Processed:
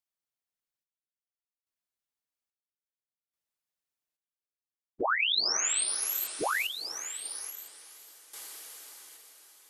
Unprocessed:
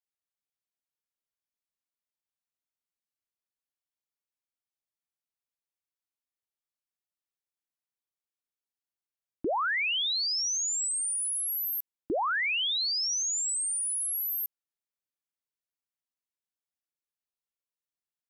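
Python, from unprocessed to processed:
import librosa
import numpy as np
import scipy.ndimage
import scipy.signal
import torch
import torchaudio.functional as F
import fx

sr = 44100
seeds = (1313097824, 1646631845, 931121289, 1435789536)

y = fx.stretch_vocoder_free(x, sr, factor=0.53)
y = fx.echo_diffused(y, sr, ms=486, feedback_pct=56, wet_db=-10.0)
y = fx.tremolo_random(y, sr, seeds[0], hz=1.2, depth_pct=85)
y = F.gain(torch.from_numpy(y), 5.5).numpy()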